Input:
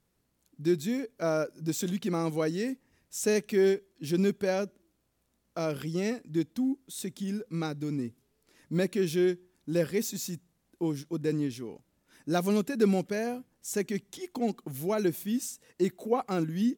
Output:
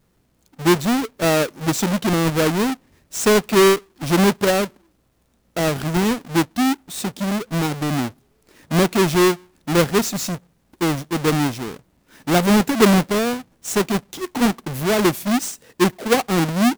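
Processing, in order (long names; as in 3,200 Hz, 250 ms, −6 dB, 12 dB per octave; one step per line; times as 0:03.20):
each half-wave held at its own peak
level +7 dB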